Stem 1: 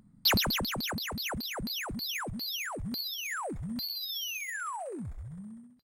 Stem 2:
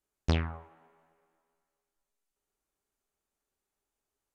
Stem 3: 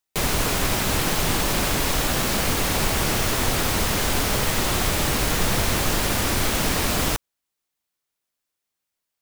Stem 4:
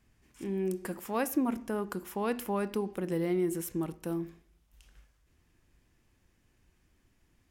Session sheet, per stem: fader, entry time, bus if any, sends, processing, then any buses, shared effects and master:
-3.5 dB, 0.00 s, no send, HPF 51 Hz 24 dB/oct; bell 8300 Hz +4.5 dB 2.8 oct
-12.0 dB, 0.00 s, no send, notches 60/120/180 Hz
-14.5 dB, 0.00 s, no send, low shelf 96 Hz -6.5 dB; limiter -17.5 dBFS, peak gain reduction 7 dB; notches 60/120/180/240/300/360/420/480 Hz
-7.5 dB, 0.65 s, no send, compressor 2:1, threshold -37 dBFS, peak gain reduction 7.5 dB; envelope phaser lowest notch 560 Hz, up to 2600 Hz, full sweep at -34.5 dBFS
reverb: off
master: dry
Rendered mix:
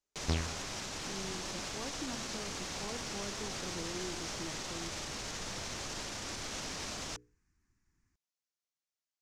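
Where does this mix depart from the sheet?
stem 1: muted; stem 2 -12.0 dB -> -5.5 dB; master: extra synth low-pass 6200 Hz, resonance Q 2.2

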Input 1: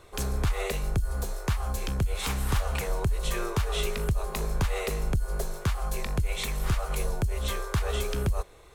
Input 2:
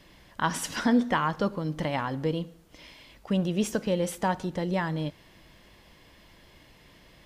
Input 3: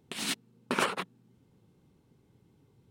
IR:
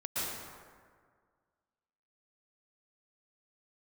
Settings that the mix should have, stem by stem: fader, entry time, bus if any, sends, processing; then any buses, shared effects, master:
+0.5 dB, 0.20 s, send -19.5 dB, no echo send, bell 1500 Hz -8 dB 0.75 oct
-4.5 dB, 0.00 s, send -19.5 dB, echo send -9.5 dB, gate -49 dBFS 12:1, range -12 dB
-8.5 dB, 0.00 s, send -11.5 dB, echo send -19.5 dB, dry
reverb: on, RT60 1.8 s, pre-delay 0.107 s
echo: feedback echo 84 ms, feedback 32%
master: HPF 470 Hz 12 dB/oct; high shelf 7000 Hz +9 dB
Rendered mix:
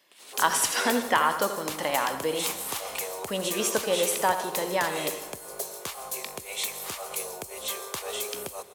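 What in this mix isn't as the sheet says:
stem 2 -4.5 dB -> +3.5 dB; stem 3 -8.5 dB -> -19.5 dB

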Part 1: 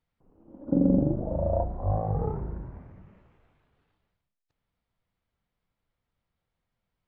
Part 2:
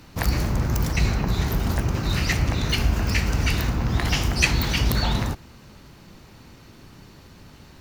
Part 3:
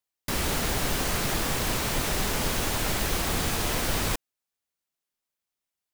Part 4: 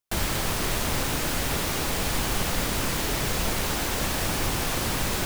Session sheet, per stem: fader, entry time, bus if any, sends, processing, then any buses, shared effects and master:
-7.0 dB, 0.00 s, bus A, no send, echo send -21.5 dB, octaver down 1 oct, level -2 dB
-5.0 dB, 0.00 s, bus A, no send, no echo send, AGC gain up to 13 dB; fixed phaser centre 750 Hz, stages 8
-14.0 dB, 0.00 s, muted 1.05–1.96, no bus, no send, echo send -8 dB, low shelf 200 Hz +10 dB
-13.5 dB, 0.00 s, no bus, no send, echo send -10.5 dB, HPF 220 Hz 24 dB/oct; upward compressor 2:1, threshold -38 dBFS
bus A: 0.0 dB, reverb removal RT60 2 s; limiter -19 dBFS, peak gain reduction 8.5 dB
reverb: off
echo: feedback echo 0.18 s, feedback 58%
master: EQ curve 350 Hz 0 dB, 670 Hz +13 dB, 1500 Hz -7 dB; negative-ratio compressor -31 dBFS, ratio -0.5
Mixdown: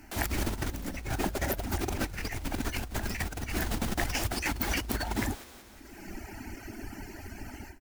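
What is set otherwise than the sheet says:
stem 1: missing octaver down 1 oct, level -2 dB; master: missing EQ curve 350 Hz 0 dB, 670 Hz +13 dB, 1500 Hz -7 dB

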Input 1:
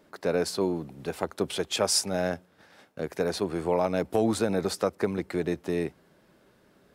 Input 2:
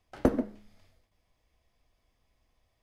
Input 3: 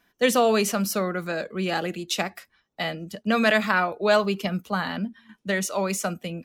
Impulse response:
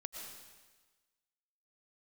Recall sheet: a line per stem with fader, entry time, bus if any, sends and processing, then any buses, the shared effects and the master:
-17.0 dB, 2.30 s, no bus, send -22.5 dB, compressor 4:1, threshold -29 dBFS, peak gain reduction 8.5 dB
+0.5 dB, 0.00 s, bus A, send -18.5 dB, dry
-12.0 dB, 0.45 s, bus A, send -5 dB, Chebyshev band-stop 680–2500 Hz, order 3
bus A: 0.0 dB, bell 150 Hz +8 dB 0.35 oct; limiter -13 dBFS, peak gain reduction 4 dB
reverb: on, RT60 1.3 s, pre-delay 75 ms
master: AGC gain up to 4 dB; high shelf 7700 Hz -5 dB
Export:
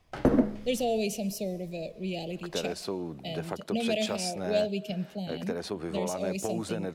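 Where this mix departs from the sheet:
stem 1 -17.0 dB -> -5.5 dB; stem 2 +0.5 dB -> +8.0 dB; reverb return -7.5 dB

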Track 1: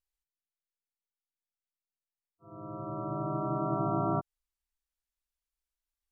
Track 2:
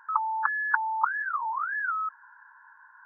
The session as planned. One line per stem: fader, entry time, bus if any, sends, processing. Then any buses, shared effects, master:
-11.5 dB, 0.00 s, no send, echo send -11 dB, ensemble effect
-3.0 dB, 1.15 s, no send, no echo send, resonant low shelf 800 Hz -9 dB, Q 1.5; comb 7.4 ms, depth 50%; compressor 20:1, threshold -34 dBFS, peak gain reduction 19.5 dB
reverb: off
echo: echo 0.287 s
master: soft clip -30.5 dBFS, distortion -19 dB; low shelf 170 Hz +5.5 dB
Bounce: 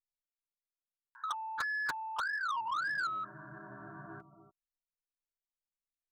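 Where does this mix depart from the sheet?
stem 1 -11.5 dB -> -18.0 dB; stem 2: missing compressor 20:1, threshold -34 dBFS, peak gain reduction 19.5 dB

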